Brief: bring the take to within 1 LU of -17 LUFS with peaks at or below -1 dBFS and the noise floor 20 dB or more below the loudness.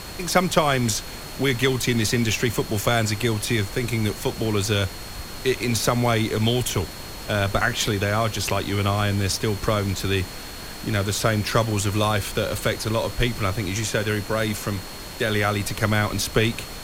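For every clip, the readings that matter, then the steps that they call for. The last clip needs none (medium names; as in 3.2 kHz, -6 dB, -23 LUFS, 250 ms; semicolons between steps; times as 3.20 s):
steady tone 4.3 kHz; tone level -42 dBFS; noise floor -36 dBFS; noise floor target -43 dBFS; loudness -23.0 LUFS; peak level -4.0 dBFS; loudness target -17.0 LUFS
-> band-stop 4.3 kHz, Q 30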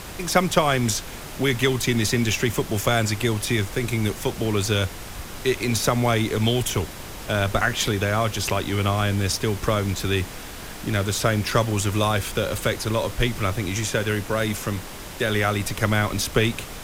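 steady tone not found; noise floor -37 dBFS; noise floor target -44 dBFS
-> noise print and reduce 7 dB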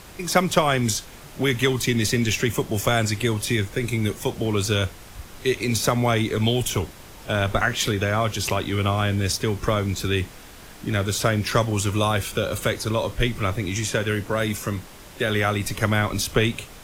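noise floor -43 dBFS; noise floor target -44 dBFS
-> noise print and reduce 6 dB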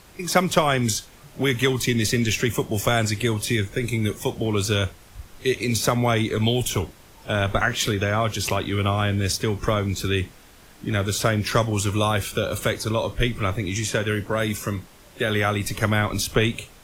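noise floor -49 dBFS; loudness -23.5 LUFS; peak level -4.5 dBFS; loudness target -17.0 LUFS
-> trim +6.5 dB; peak limiter -1 dBFS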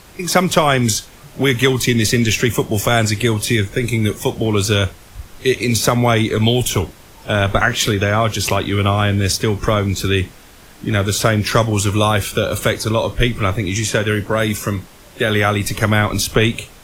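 loudness -17.0 LUFS; peak level -1.0 dBFS; noise floor -43 dBFS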